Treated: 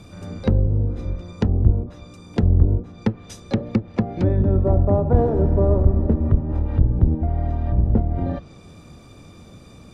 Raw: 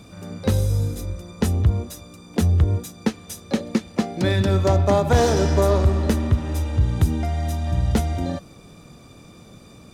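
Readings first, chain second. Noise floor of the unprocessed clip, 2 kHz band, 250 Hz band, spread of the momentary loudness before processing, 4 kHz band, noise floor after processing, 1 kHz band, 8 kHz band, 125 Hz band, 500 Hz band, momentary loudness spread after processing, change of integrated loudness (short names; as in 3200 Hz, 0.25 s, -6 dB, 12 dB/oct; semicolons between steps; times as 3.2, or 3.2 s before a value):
-47 dBFS, -10.0 dB, +1.0 dB, 11 LU, under -10 dB, -45 dBFS, -5.0 dB, under -15 dB, +1.5 dB, -1.0 dB, 9 LU, +0.5 dB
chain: octaver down 1 oct, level -2 dB; treble ducked by the level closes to 640 Hz, closed at -15.5 dBFS; high shelf 6900 Hz -4 dB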